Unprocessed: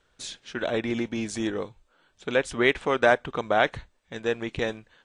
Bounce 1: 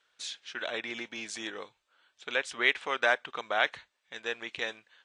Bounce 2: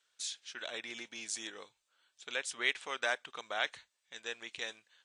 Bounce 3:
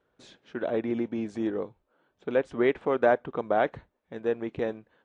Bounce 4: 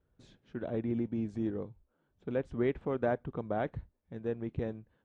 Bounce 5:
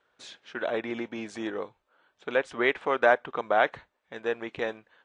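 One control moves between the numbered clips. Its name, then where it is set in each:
band-pass filter, frequency: 3.1 kHz, 7.8 kHz, 370 Hz, 100 Hz, 960 Hz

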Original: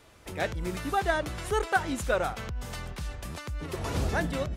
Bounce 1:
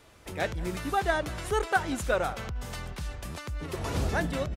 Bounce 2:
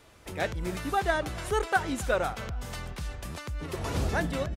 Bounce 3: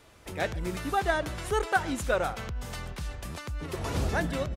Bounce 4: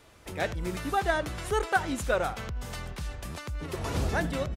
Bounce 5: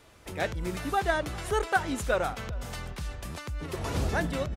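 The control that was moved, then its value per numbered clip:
speakerphone echo, time: 190 ms, 280 ms, 130 ms, 80 ms, 400 ms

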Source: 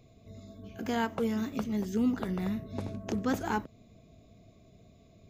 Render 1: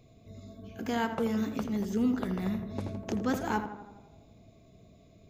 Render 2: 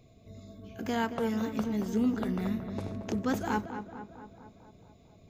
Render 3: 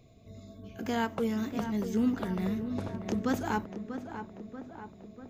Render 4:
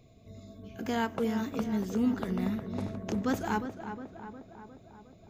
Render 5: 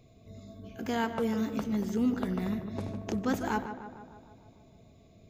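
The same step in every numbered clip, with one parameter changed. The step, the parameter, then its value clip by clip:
tape echo, time: 82 ms, 225 ms, 639 ms, 358 ms, 150 ms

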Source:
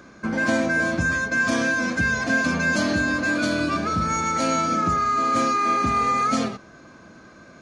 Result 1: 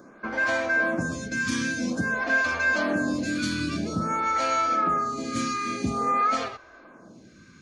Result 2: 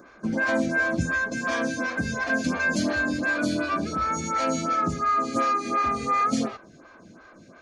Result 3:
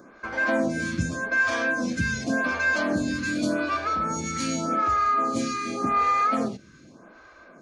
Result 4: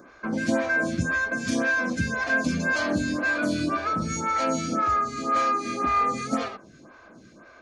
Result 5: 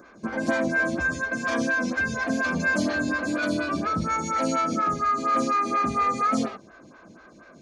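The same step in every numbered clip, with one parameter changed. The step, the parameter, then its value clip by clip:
lamp-driven phase shifter, rate: 0.5 Hz, 2.8 Hz, 0.86 Hz, 1.9 Hz, 4.2 Hz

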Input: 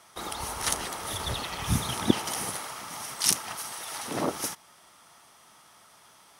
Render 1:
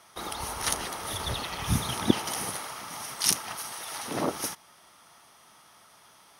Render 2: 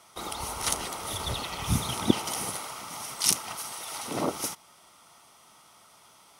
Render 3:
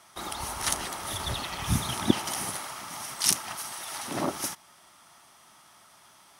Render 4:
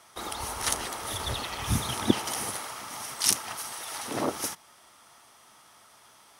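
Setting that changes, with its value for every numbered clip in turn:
band-stop, frequency: 7.6 kHz, 1.7 kHz, 470 Hz, 170 Hz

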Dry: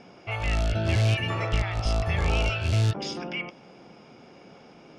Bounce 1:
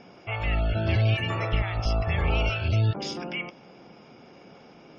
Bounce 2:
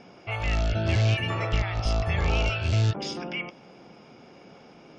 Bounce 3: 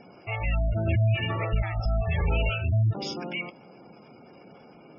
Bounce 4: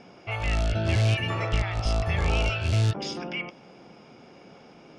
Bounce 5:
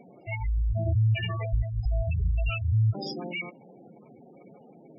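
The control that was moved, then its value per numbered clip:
spectral gate, under each frame's peak: -35 dB, -45 dB, -20 dB, -60 dB, -10 dB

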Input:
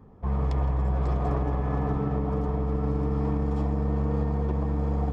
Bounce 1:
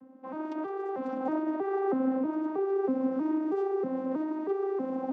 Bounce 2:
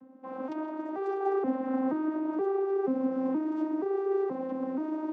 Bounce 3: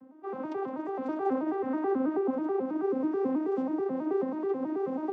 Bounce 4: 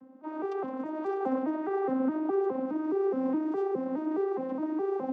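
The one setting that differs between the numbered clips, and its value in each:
vocoder on a broken chord, a note every: 319 ms, 477 ms, 108 ms, 208 ms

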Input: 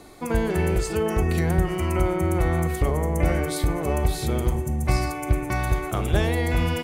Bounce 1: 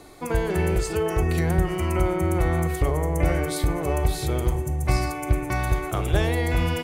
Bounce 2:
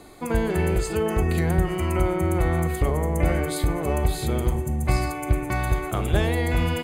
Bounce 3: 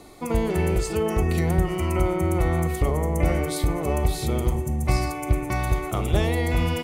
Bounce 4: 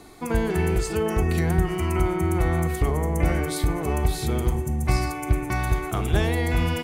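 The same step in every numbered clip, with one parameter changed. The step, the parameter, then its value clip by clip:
band-stop, frequency: 220 Hz, 5.6 kHz, 1.6 kHz, 560 Hz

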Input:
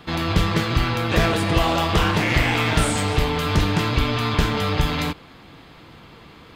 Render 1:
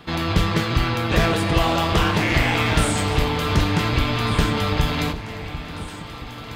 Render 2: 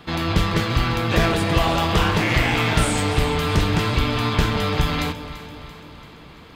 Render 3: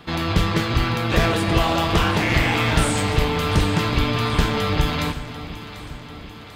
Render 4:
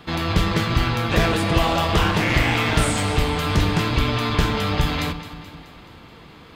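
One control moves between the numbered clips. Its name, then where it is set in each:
echo whose repeats swap between lows and highs, time: 748 ms, 169 ms, 371 ms, 107 ms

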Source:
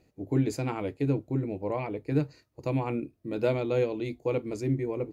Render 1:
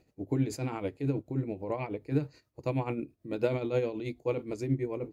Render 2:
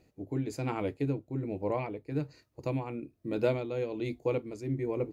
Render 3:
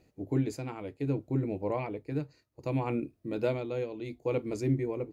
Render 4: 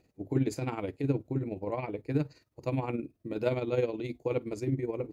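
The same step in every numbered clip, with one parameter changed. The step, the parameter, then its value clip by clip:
tremolo, rate: 9.3 Hz, 1.2 Hz, 0.65 Hz, 19 Hz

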